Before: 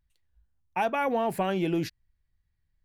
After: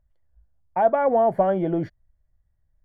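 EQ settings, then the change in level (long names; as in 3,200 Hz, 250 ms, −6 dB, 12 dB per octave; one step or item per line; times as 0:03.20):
Savitzky-Golay smoothing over 41 samples
low-shelf EQ 130 Hz +8 dB
parametric band 620 Hz +12.5 dB 0.66 octaves
0.0 dB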